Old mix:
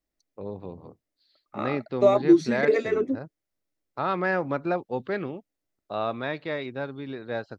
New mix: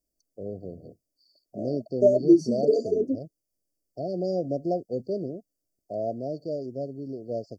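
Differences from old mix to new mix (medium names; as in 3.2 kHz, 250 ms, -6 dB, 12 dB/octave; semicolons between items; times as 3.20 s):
first voice: add treble shelf 2.2 kHz +8 dB; master: add brick-wall FIR band-stop 730–4400 Hz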